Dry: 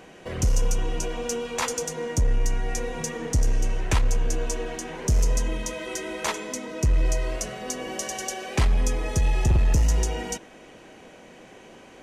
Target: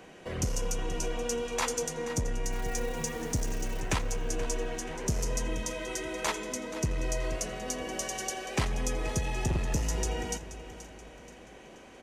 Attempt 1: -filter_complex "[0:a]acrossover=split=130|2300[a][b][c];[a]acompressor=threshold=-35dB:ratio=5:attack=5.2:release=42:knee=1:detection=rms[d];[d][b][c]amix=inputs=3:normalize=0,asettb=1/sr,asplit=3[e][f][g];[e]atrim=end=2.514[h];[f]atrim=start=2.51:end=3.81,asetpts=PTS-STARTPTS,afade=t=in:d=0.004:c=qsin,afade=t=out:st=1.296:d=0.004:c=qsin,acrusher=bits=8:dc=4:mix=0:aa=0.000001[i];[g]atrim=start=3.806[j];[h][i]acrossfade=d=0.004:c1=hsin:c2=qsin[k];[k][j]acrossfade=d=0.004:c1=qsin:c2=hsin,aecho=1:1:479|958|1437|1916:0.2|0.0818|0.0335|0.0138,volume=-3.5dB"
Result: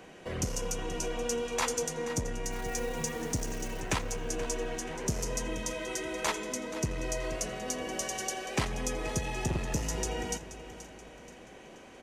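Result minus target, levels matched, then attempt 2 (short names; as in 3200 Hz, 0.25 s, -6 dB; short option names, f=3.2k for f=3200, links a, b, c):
compressor: peak gain reduction +6 dB
-filter_complex "[0:a]acrossover=split=130|2300[a][b][c];[a]acompressor=threshold=-27.5dB:ratio=5:attack=5.2:release=42:knee=1:detection=rms[d];[d][b][c]amix=inputs=3:normalize=0,asettb=1/sr,asplit=3[e][f][g];[e]atrim=end=2.514[h];[f]atrim=start=2.51:end=3.81,asetpts=PTS-STARTPTS,afade=t=in:d=0.004:c=qsin,afade=t=out:st=1.296:d=0.004:c=qsin,acrusher=bits=8:dc=4:mix=0:aa=0.000001[i];[g]atrim=start=3.806[j];[h][i]acrossfade=d=0.004:c1=hsin:c2=qsin[k];[k][j]acrossfade=d=0.004:c1=qsin:c2=hsin,aecho=1:1:479|958|1437|1916:0.2|0.0818|0.0335|0.0138,volume=-3.5dB"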